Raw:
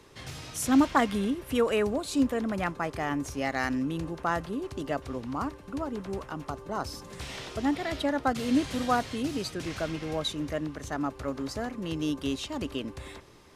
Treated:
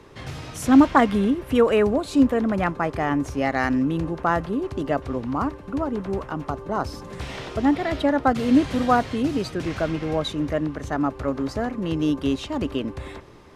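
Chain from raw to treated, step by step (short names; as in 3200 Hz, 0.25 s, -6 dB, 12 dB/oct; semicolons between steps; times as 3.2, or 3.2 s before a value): high shelf 3200 Hz -11.5 dB; gain +8 dB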